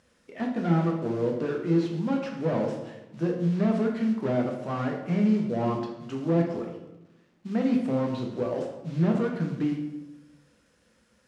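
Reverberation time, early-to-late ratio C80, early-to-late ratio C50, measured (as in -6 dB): 1.0 s, 7.5 dB, 5.0 dB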